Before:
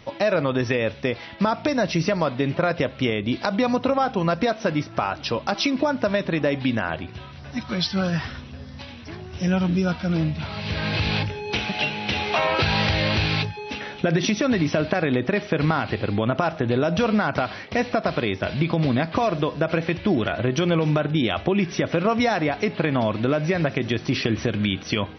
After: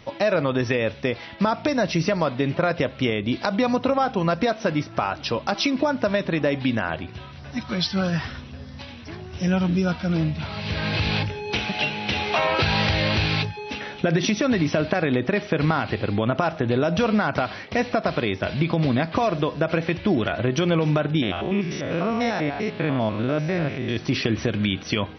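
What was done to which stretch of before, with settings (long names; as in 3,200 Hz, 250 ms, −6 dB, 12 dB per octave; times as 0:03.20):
0:21.22–0:23.97: spectrum averaged block by block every 100 ms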